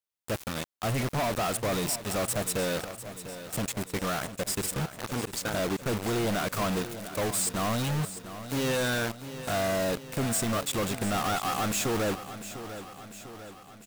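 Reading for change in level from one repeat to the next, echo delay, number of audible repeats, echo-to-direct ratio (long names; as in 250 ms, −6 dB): −4.5 dB, 698 ms, 5, −10.5 dB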